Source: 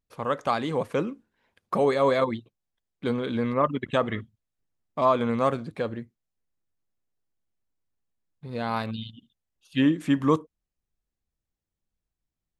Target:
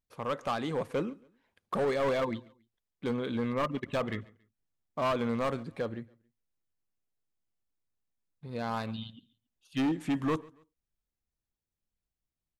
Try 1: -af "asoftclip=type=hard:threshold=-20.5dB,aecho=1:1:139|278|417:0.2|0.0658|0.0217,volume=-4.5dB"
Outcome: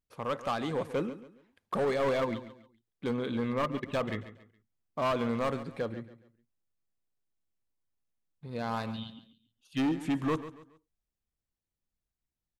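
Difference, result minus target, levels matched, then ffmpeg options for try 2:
echo-to-direct +10 dB
-af "asoftclip=type=hard:threshold=-20.5dB,aecho=1:1:139|278:0.0631|0.0208,volume=-4.5dB"

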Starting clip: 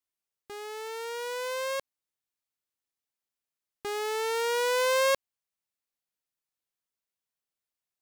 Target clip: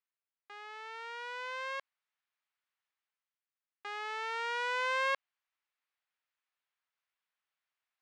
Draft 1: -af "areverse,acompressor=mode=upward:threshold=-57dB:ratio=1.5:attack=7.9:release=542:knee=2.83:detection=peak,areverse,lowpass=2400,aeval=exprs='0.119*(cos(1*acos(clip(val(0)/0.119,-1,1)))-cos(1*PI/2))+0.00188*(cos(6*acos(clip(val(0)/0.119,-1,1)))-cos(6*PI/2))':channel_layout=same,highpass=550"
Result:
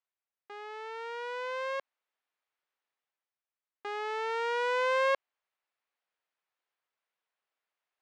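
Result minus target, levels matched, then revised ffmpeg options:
500 Hz band +6.5 dB
-af "areverse,acompressor=mode=upward:threshold=-57dB:ratio=1.5:attack=7.9:release=542:knee=2.83:detection=peak,areverse,lowpass=2400,aeval=exprs='0.119*(cos(1*acos(clip(val(0)/0.119,-1,1)))-cos(1*PI/2))+0.00188*(cos(6*acos(clip(val(0)/0.119,-1,1)))-cos(6*PI/2))':channel_layout=same,highpass=1100"

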